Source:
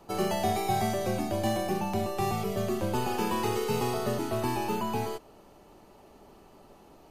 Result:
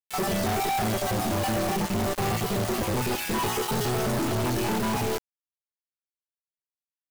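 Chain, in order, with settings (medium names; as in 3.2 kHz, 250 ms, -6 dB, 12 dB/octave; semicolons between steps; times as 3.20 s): random holes in the spectrogram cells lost 31%; peaking EQ 110 Hz +5.5 dB 2.6 oct; de-hum 59.35 Hz, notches 30; companded quantiser 2-bit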